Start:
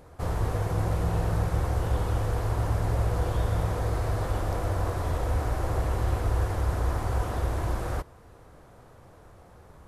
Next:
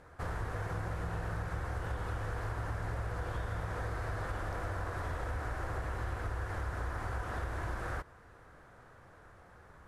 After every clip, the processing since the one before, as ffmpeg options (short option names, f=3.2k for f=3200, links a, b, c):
-af "lowpass=11k,equalizer=f=1.6k:w=1.4:g=11,acompressor=threshold=-26dB:ratio=6,volume=-7dB"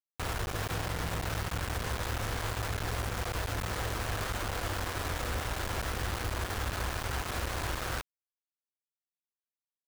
-af "acrusher=bits=5:mix=0:aa=0.000001,volume=1.5dB"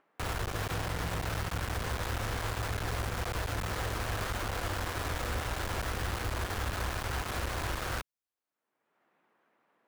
-filter_complex "[0:a]acrossover=split=170|1900[a][b][c];[b]acompressor=mode=upward:threshold=-46dB:ratio=2.5[d];[c]aeval=exprs='clip(val(0),-1,0.0133)':c=same[e];[a][d][e]amix=inputs=3:normalize=0"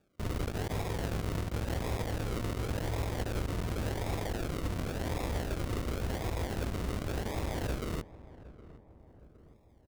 -filter_complex "[0:a]acrusher=samples=42:mix=1:aa=0.000001:lfo=1:lforange=25.2:lforate=0.91,asplit=2[a][b];[b]adelay=763,lowpass=f=1.2k:p=1,volume=-17dB,asplit=2[c][d];[d]adelay=763,lowpass=f=1.2k:p=1,volume=0.54,asplit=2[e][f];[f]adelay=763,lowpass=f=1.2k:p=1,volume=0.54,asplit=2[g][h];[h]adelay=763,lowpass=f=1.2k:p=1,volume=0.54,asplit=2[i][j];[j]adelay=763,lowpass=f=1.2k:p=1,volume=0.54[k];[a][c][e][g][i][k]amix=inputs=6:normalize=0"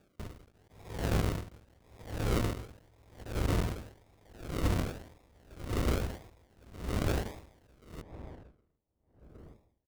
-af "aeval=exprs='val(0)*pow(10,-36*(0.5-0.5*cos(2*PI*0.85*n/s))/20)':c=same,volume=6dB"